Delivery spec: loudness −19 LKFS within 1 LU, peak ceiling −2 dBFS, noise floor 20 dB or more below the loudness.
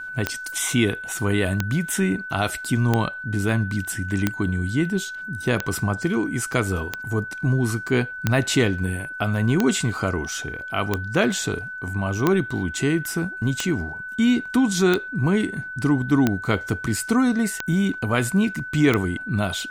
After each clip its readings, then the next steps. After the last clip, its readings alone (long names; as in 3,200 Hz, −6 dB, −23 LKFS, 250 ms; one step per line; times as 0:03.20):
number of clicks 15; interfering tone 1,500 Hz; level of the tone −31 dBFS; integrated loudness −23.0 LKFS; sample peak −3.0 dBFS; target loudness −19.0 LKFS
→ click removal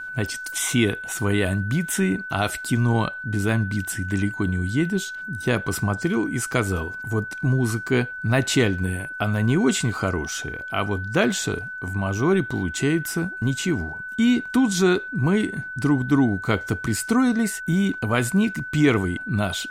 number of clicks 0; interfering tone 1,500 Hz; level of the tone −31 dBFS
→ notch filter 1,500 Hz, Q 30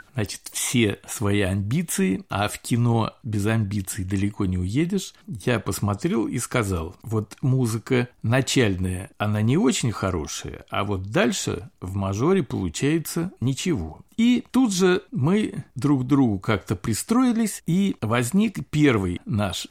interfering tone none found; integrated loudness −23.5 LKFS; sample peak −7.0 dBFS; target loudness −19.0 LKFS
→ level +4.5 dB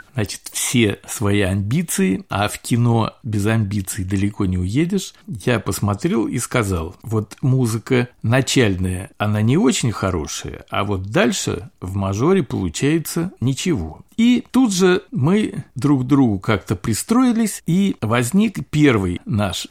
integrated loudness −19.0 LKFS; sample peak −2.5 dBFS; background noise floor −52 dBFS